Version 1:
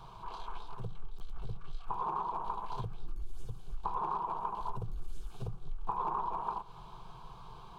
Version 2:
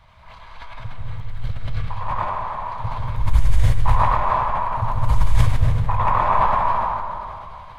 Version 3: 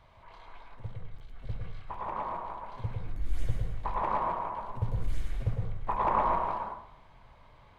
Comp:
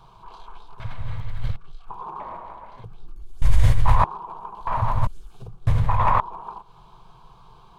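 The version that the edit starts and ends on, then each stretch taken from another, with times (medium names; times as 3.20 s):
1
0.80–1.56 s: from 2
2.20–2.84 s: from 3
3.42–4.04 s: from 2
4.67–5.07 s: from 2
5.67–6.20 s: from 2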